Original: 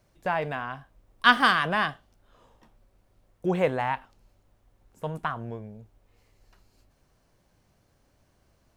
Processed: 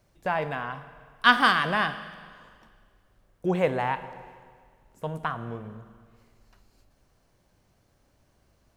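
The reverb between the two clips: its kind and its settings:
four-comb reverb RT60 1.9 s, DRR 12 dB

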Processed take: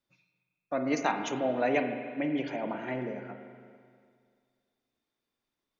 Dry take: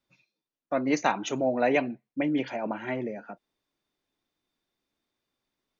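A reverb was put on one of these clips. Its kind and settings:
spring reverb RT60 2.1 s, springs 39/48 ms, chirp 80 ms, DRR 5.5 dB
level −4 dB

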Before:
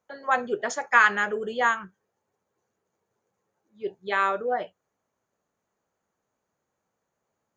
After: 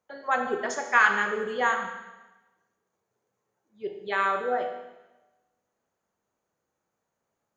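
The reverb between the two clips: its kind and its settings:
four-comb reverb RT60 1.1 s, combs from 25 ms, DRR 4.5 dB
level −2.5 dB

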